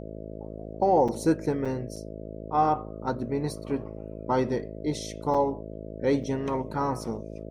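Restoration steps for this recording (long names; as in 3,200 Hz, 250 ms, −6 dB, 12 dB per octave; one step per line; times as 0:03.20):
hum removal 53.7 Hz, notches 12
repair the gap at 0:01.08/0:01.65/0:01.96/0:05.34/0:06.23, 5.4 ms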